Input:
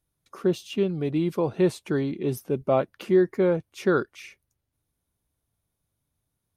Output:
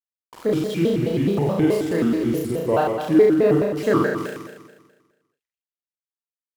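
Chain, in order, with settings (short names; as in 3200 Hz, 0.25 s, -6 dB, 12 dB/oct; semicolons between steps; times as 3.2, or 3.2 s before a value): sample gate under -39 dBFS; flutter echo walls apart 6.9 m, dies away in 1.4 s; shaped vibrato square 4.7 Hz, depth 250 cents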